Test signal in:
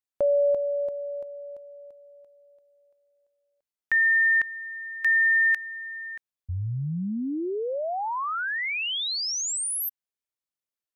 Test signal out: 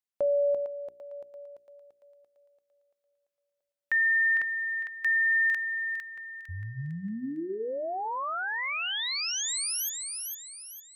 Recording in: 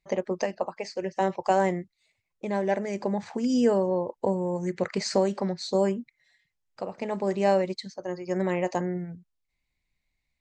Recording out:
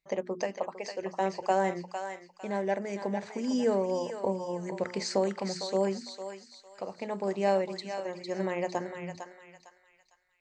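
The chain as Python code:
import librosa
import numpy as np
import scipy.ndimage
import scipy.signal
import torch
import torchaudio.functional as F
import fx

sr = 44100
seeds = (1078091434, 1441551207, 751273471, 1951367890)

y = fx.low_shelf(x, sr, hz=100.0, db=-7.5)
y = fx.hum_notches(y, sr, base_hz=60, count=7)
y = fx.echo_thinned(y, sr, ms=454, feedback_pct=40, hz=1100.0, wet_db=-4.5)
y = F.gain(torch.from_numpy(y), -3.5).numpy()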